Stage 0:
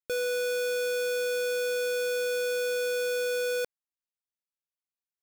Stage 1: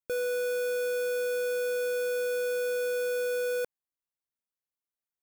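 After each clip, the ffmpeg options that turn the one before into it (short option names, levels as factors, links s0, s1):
-af "equalizer=f=4200:w=0.65:g=-8"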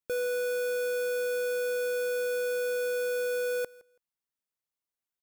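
-af "aecho=1:1:165|330:0.075|0.0135"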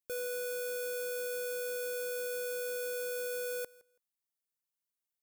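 -af "highshelf=f=5000:g=10.5,volume=0.398"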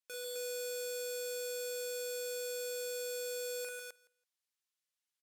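-filter_complex "[0:a]bandpass=f=3600:t=q:w=0.55:csg=0,asplit=2[s0][s1];[s1]aecho=0:1:40.82|145.8|259.5:0.794|0.562|0.794[s2];[s0][s2]amix=inputs=2:normalize=0,volume=1.12"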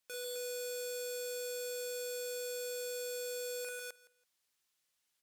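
-af "alimiter=level_in=6.31:limit=0.0631:level=0:latency=1:release=382,volume=0.158,volume=2.82"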